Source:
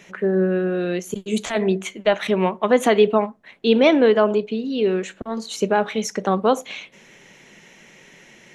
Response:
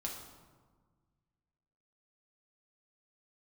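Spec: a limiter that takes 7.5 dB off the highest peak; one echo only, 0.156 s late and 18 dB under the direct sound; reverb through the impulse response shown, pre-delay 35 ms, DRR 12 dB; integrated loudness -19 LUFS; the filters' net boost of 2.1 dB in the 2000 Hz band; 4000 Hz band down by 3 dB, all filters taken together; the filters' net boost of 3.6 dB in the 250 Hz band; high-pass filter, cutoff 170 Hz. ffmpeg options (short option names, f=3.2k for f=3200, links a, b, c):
-filter_complex "[0:a]highpass=170,equalizer=f=250:t=o:g=6,equalizer=f=2k:t=o:g=4,equalizer=f=4k:t=o:g=-6,alimiter=limit=-9dB:level=0:latency=1,aecho=1:1:156:0.126,asplit=2[a][b];[1:a]atrim=start_sample=2205,adelay=35[c];[b][c]afir=irnorm=-1:irlink=0,volume=-12dB[d];[a][d]amix=inputs=2:normalize=0,volume=1dB"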